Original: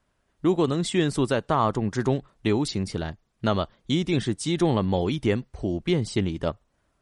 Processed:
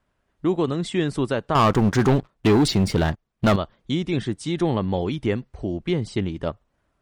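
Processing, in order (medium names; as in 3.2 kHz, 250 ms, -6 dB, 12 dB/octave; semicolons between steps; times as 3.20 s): tone controls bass 0 dB, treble -6 dB; 1.55–3.56 s: waveshaping leveller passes 3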